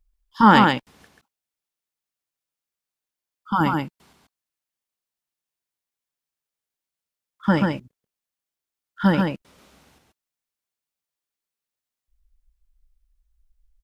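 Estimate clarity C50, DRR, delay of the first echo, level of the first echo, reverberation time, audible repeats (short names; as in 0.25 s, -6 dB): none, none, 0.135 s, -3.5 dB, none, 1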